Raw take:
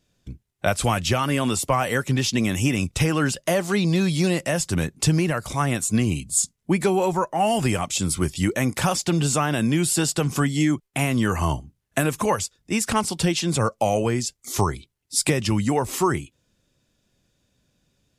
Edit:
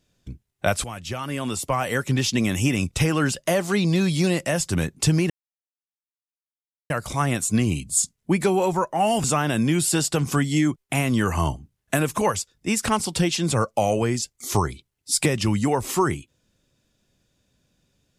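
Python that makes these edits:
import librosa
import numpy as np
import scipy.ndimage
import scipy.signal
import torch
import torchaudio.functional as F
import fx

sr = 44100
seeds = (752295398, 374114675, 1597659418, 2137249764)

y = fx.edit(x, sr, fx.fade_in_from(start_s=0.84, length_s=1.32, floor_db=-15.0),
    fx.insert_silence(at_s=5.3, length_s=1.6),
    fx.cut(start_s=7.64, length_s=1.64), tone=tone)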